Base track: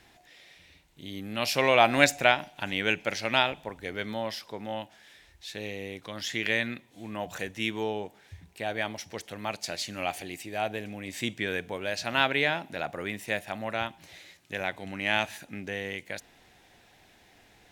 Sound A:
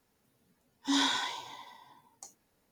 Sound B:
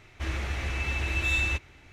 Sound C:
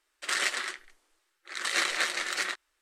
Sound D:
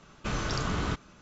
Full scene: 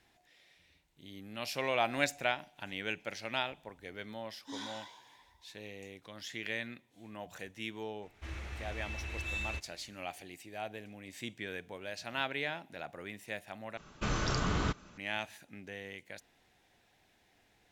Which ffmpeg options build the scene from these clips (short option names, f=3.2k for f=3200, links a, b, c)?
-filter_complex "[0:a]volume=-10.5dB,asplit=2[a][b];[a]atrim=end=13.774[c];[4:a]atrim=end=1.21,asetpts=PTS-STARTPTS,volume=-1.5dB[d];[b]atrim=start=14.976[e];[1:a]atrim=end=2.71,asetpts=PTS-STARTPTS,volume=-15.5dB,afade=t=in:d=0.004:c=hsin,afade=t=out:st=2.706:d=0.004:c=hsin,adelay=3600[f];[2:a]atrim=end=1.92,asetpts=PTS-STARTPTS,volume=-11.5dB,afade=t=in:d=0.004:c=hsin,afade=t=out:st=1.916:d=0.004:c=hsin,adelay=353682S[g];[c][d]acrossfade=d=0.004:c1=hsin:c2=hsin[h];[h][e]acrossfade=d=0.004:c1=hsin:c2=hsin[i];[i][f][g]amix=inputs=3:normalize=0"